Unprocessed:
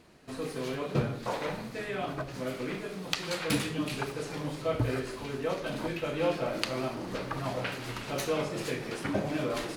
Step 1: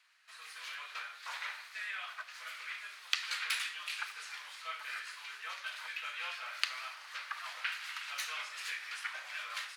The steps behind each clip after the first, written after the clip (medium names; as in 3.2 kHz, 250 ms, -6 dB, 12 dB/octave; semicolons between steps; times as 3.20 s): level rider gain up to 4 dB; high-pass 1.4 kHz 24 dB/octave; treble shelf 5.1 kHz -9 dB; trim -1.5 dB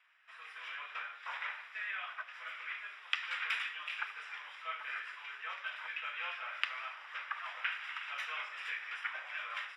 Savitzky-Golay filter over 25 samples; trim +1.5 dB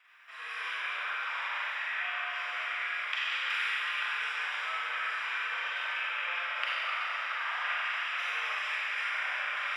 in parallel at -1.5 dB: compressor with a negative ratio -47 dBFS, ratio -0.5; on the sum: Schroeder reverb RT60 3 s, combs from 32 ms, DRR -8 dB; trim -3 dB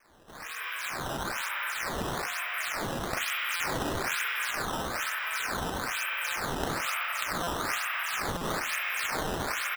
delay 589 ms -3 dB; decimation with a swept rate 11×, swing 160% 1.1 Hz; buffer glitch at 3.56/7.43/8.37 s, samples 256, times 6